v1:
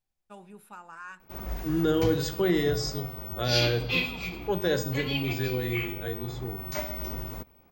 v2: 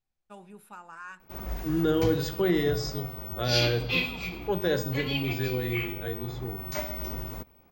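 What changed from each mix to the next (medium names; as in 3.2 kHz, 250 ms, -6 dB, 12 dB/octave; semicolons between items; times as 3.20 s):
second voice: add distance through air 60 m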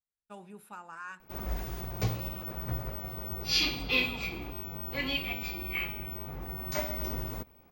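second voice: muted; reverb: off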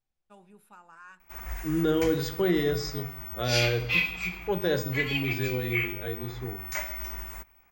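first voice -6.5 dB; second voice: unmuted; background: add graphic EQ 125/250/500/2000/4000/8000 Hz -11/-11/-9/+9/-8/+9 dB; reverb: on, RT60 0.70 s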